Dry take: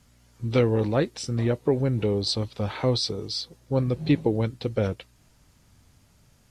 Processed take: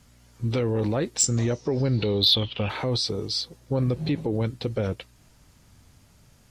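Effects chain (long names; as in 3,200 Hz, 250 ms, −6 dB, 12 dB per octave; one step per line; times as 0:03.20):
brickwall limiter −19.5 dBFS, peak gain reduction 9 dB
0:01.18–0:02.68: low-pass with resonance 7,700 Hz → 2,700 Hz, resonance Q 14
soft clipping −11 dBFS, distortion −27 dB
level +3 dB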